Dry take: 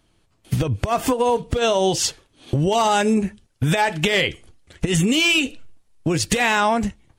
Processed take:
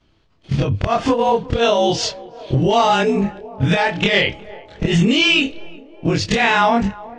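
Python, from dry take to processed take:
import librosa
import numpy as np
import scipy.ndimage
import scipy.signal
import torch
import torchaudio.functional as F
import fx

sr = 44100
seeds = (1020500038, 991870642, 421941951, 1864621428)

y = fx.frame_reverse(x, sr, frame_ms=60.0)
y = scipy.signal.sosfilt(scipy.signal.butter(4, 5400.0, 'lowpass', fs=sr, output='sos'), y)
y = fx.echo_banded(y, sr, ms=363, feedback_pct=75, hz=580.0, wet_db=-18.5)
y = F.gain(torch.from_numpy(y), 6.5).numpy()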